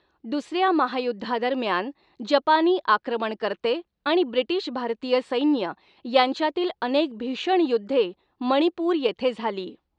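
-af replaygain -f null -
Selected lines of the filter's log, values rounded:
track_gain = +3.7 dB
track_peak = 0.385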